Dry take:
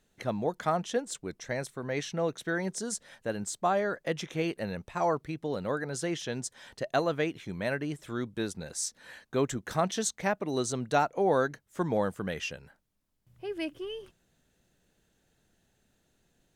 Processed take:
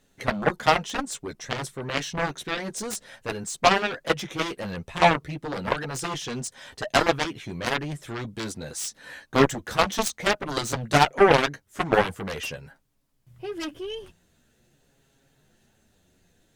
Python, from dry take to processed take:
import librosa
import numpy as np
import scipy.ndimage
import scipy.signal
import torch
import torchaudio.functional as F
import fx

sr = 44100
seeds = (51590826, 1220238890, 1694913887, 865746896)

y = fx.chorus_voices(x, sr, voices=4, hz=0.24, base_ms=11, depth_ms=3.7, mix_pct=40)
y = fx.cheby_harmonics(y, sr, harmonics=(5, 7), levels_db=(-11, -6), full_scale_db=-16.0)
y = y * librosa.db_to_amplitude(8.5)